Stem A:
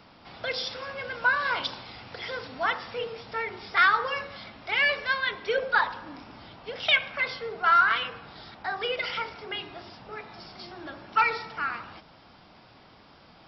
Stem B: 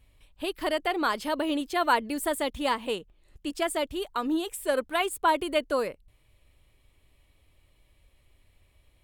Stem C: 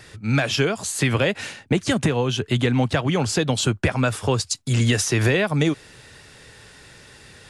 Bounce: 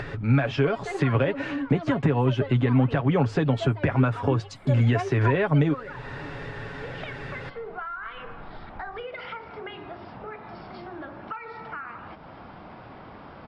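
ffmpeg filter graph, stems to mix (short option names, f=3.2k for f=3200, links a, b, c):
-filter_complex "[0:a]acompressor=threshold=-30dB:ratio=6,adelay=150,volume=-11dB[a];[1:a]aphaser=in_gain=1:out_gain=1:delay=4:decay=0.78:speed=0.33:type=triangular,volume=-9.5dB[b];[2:a]bandreject=f=50:t=h:w=6,bandreject=f=100:t=h:w=6,volume=1.5dB[c];[b][c]amix=inputs=2:normalize=0,aecho=1:1:7.2:0.5,alimiter=limit=-11.5dB:level=0:latency=1:release=248,volume=0dB[d];[a][d]amix=inputs=2:normalize=0,lowpass=1.7k,acompressor=mode=upward:threshold=-25dB:ratio=2.5"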